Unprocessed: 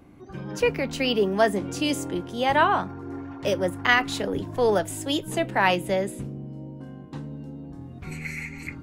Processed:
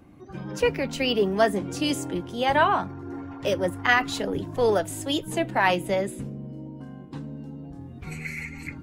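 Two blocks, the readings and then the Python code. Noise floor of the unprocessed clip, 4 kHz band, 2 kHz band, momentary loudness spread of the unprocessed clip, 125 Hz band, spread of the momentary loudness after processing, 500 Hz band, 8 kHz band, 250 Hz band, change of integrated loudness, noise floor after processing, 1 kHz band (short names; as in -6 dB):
-42 dBFS, -0.5 dB, -0.5 dB, 18 LU, -0.5 dB, 18 LU, 0.0 dB, -0.5 dB, -0.5 dB, -0.5 dB, -42 dBFS, -0.5 dB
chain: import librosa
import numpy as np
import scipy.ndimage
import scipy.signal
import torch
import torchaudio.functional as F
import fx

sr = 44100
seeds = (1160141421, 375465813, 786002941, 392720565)

y = fx.spec_quant(x, sr, step_db=15)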